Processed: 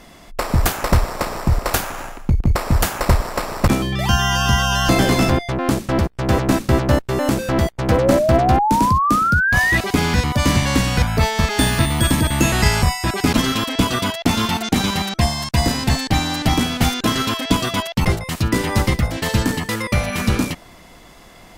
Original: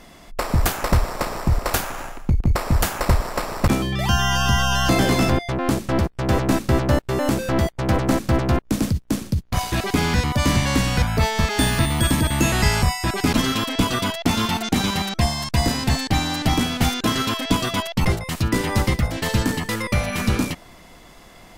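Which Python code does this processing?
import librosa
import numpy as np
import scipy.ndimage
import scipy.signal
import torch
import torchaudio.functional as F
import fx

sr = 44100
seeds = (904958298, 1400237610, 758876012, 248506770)

y = fx.cheby_harmonics(x, sr, harmonics=(3,), levels_db=(-23,), full_scale_db=-5.5)
y = fx.spec_paint(y, sr, seeds[0], shape='rise', start_s=7.91, length_s=1.87, low_hz=480.0, high_hz=2000.0, level_db=-21.0)
y = y * 10.0 ** (4.0 / 20.0)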